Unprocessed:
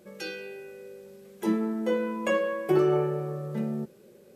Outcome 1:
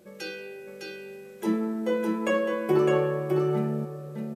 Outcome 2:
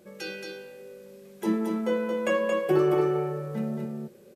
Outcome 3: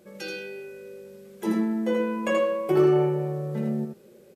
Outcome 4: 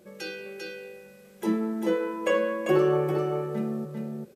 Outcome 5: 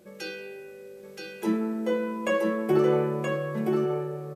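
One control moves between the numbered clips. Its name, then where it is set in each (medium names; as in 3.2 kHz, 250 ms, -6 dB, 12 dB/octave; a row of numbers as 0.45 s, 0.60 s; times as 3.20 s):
delay, time: 608 ms, 225 ms, 81 ms, 396 ms, 974 ms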